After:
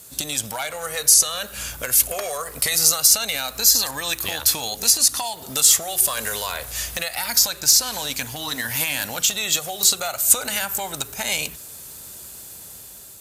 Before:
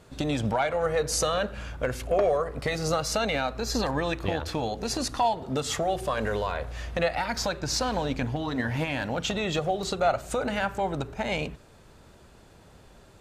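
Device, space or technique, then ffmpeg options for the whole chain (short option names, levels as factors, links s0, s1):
FM broadcast chain: -filter_complex "[0:a]highpass=52,dynaudnorm=f=410:g=5:m=1.78,acrossover=split=820|7300[s0][s1][s2];[s0]acompressor=threshold=0.0224:ratio=4[s3];[s1]acompressor=threshold=0.0501:ratio=4[s4];[s2]acompressor=threshold=0.0112:ratio=4[s5];[s3][s4][s5]amix=inputs=3:normalize=0,aemphasis=mode=production:type=75fm,alimiter=limit=0.251:level=0:latency=1:release=496,asoftclip=type=hard:threshold=0.188,lowpass=f=15000:w=0.5412,lowpass=f=15000:w=1.3066,aemphasis=mode=production:type=75fm,volume=0.891"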